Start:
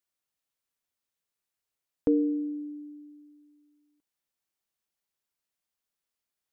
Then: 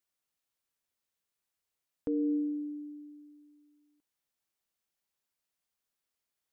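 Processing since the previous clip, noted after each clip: limiter -24.5 dBFS, peak gain reduction 10 dB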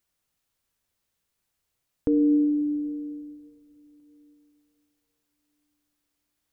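low shelf 170 Hz +11 dB; on a send at -12 dB: reverb RT60 3.3 s, pre-delay 21 ms; on the sum: gain +7 dB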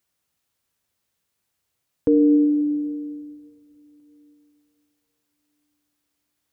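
HPF 62 Hz; dynamic EQ 570 Hz, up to +8 dB, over -40 dBFS, Q 1.4; gain +2.5 dB

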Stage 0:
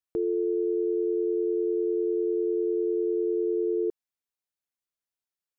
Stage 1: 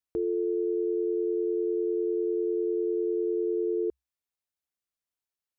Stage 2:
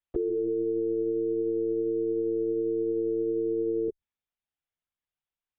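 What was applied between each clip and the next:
bell 66 Hz +10.5 dB 0.31 oct; gain -1.5 dB
LPC vocoder at 8 kHz pitch kept

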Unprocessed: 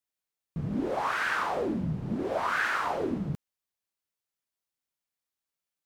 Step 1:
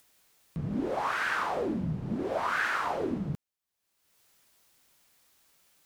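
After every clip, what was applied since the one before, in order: upward compressor, threshold -44 dBFS; gain -1 dB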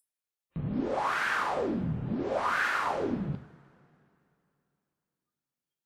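spectral noise reduction 29 dB; two-slope reverb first 0.58 s, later 2.9 s, from -20 dB, DRR 7.5 dB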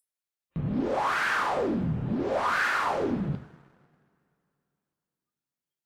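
sample leveller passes 1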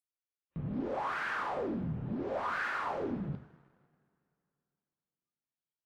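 high shelf 4400 Hz -11.5 dB; gain -7.5 dB

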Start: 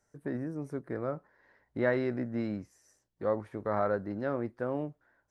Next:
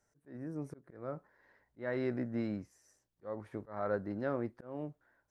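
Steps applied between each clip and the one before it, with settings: auto swell 0.294 s; gain -2.5 dB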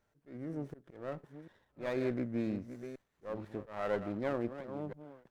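reverse delay 0.493 s, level -11 dB; running maximum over 9 samples; gain +1 dB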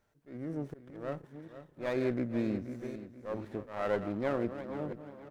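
feedback echo 0.481 s, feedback 35%, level -12.5 dB; gain +2.5 dB

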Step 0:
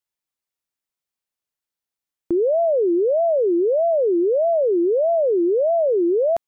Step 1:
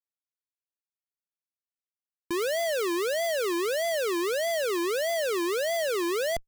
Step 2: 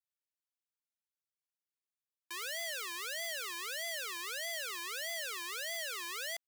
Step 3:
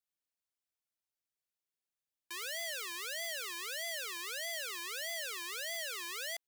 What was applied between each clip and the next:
Schmitt trigger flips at -36 dBFS; gain -7.5 dB
HPF 1500 Hz 12 dB/oct; gain -4.5 dB
bell 1200 Hz -3 dB 0.72 oct

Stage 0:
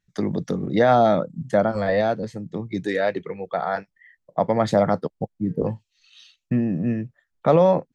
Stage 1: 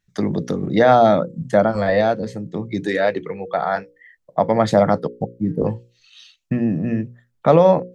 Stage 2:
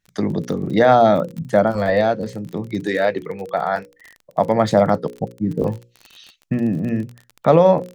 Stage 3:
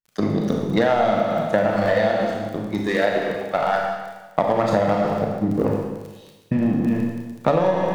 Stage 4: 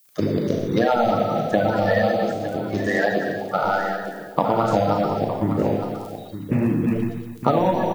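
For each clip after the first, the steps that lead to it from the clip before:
notches 60/120/180/240/300/360/420/480/540 Hz; gain +4 dB
crackle 32/s -28 dBFS
power-law curve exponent 1.4; Schroeder reverb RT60 1.2 s, combs from 26 ms, DRR 0 dB; compressor 10:1, threshold -19 dBFS, peak gain reduction 13 dB; gain +4.5 dB
bin magnitudes rounded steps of 30 dB; added noise violet -57 dBFS; echo 0.912 s -11 dB

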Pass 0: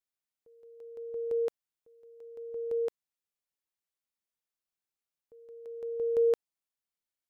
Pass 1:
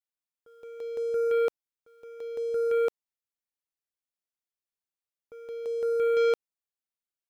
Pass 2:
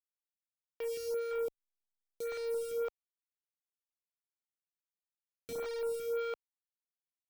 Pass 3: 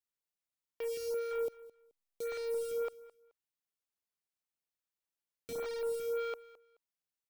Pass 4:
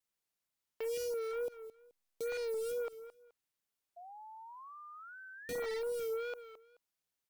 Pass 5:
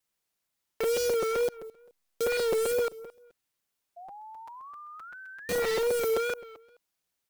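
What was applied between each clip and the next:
sample leveller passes 3
level-crossing sampler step -33 dBFS; limiter -30.5 dBFS, peak gain reduction 9.5 dB; photocell phaser 1.8 Hz
feedback echo 0.214 s, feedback 21%, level -19 dB
limiter -36.5 dBFS, peak gain reduction 7.5 dB; painted sound rise, 3.96–5.78, 710–2100 Hz -55 dBFS; wow and flutter 73 cents; gain +4 dB
in parallel at -6.5 dB: requantised 6-bit, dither none; on the sum: crackling interface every 0.13 s, samples 256, repeat, from 0.57; gain +6 dB

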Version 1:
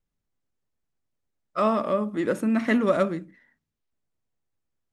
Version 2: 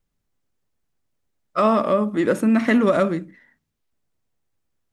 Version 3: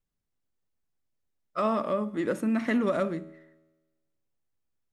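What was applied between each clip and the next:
maximiser +13 dB; gain -7 dB
resonator 80 Hz, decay 1.2 s, harmonics all, mix 40%; gain -5 dB

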